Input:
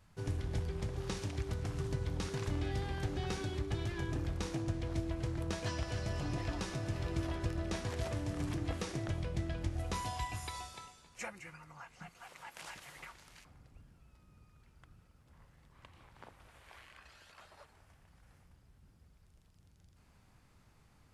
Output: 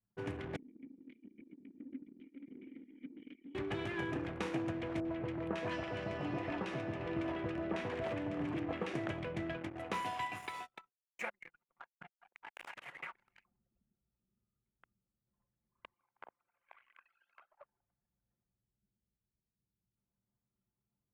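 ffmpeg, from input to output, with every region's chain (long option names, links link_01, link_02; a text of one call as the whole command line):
ffmpeg -i in.wav -filter_complex "[0:a]asettb=1/sr,asplit=3[link_01][link_02][link_03];[link_01]atrim=end=0.564[link_04];[link_02]atrim=start=0.56:end=3.55,asetpts=PTS-STARTPTS,afade=type=in:duration=0.004:curve=qsin,afade=type=out:start_time=2.986:duration=0.004:curve=qsin,aeval=exprs='abs(val(0))':channel_layout=same,asplit=3[link_05][link_06][link_07];[link_05]bandpass=frequency=270:width_type=q:width=8,volume=0dB[link_08];[link_06]bandpass=frequency=2290:width_type=q:width=8,volume=-6dB[link_09];[link_07]bandpass=frequency=3010:width_type=q:width=8,volume=-9dB[link_10];[link_08][link_09][link_10]amix=inputs=3:normalize=0[link_11];[link_03]atrim=start=3.546[link_12];[link_04][link_11]acrossfade=duration=0.004:curve1=hsin:curve2=qsin[link_13];[link_13][link_12]acrossfade=duration=0.004:curve1=qsin:curve2=hsin,asettb=1/sr,asplit=3[link_14][link_15][link_16];[link_14]atrim=end=5.004[link_17];[link_15]atrim=start=5:end=8.95,asetpts=PTS-STARTPTS,afade=type=in:duration=0.004:curve=qsin,afade=type=out:start_time=3.946:duration=0.004:curve=qsin,highshelf=frequency=5300:gain=-10,acrossover=split=1500[link_18][link_19];[link_19]adelay=50[link_20];[link_18][link_20]amix=inputs=2:normalize=0,atrim=end_sample=174195[link_21];[link_16]atrim=start=8.946[link_22];[link_17][link_21]acrossfade=duration=0.004:curve1=hsin:curve2=qsin[link_23];[link_23][link_22]acrossfade=duration=0.004:curve1=qsin:curve2=hsin,asettb=1/sr,asplit=3[link_24][link_25][link_26];[link_24]atrim=end=9.574[link_27];[link_25]atrim=start=9.57:end=12.77,asetpts=PTS-STARTPTS,afade=type=in:duration=0.004:curve=qsin,afade=type=out:start_time=3.196:duration=0.004:curve=qsin,highpass=95,aeval=exprs='sgn(val(0))*max(abs(val(0))-0.00251,0)':channel_layout=same[link_28];[link_26]atrim=start=12.766[link_29];[link_27][link_28]acrossfade=duration=0.004:curve1=hsin:curve2=qsin[link_30];[link_30][link_29]acrossfade=duration=0.004:curve1=qsin:curve2=hsin,asettb=1/sr,asplit=3[link_31][link_32][link_33];[link_31]atrim=end=15.934[link_34];[link_32]atrim=start=15.93:end=17.61,asetpts=PTS-STARTPTS,afade=type=in:duration=0.004:curve=qsin,afade=type=out:start_time=1.676:duration=0.004:curve=qsin,highpass=frequency=660:poles=1,bandreject=frequency=1800:width=20[link_35];[link_33]atrim=start=17.606[link_36];[link_34][link_35]acrossfade=duration=0.004:curve1=hsin:curve2=qsin[link_37];[link_37][link_36]acrossfade=duration=0.004:curve1=qsin:curve2=hsin,highpass=210,anlmdn=0.00158,highshelf=frequency=3500:width_type=q:width=1.5:gain=-10,volume=3.5dB" out.wav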